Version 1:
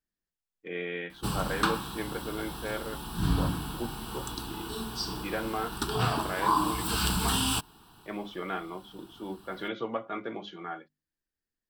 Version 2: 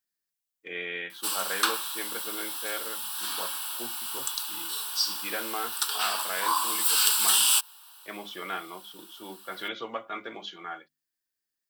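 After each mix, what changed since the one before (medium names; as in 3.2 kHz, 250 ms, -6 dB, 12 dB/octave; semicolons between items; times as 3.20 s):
background: add high-pass 880 Hz 12 dB/octave; master: add tilt EQ +3.5 dB/octave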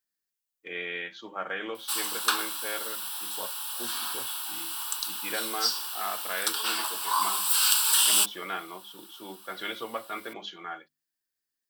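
background: entry +0.65 s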